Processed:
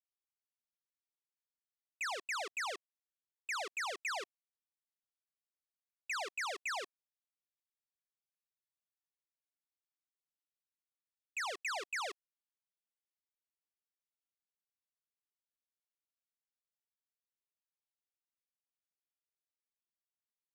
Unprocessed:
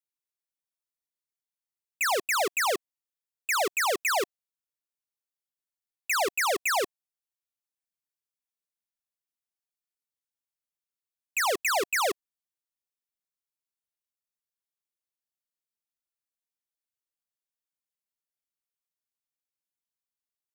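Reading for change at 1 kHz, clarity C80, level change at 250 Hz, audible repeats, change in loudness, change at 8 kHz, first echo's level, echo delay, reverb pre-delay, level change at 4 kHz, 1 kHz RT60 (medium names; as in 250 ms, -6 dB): -13.5 dB, no reverb, -20.5 dB, no echo, -12.5 dB, -15.5 dB, no echo, no echo, no reverb, -11.5 dB, no reverb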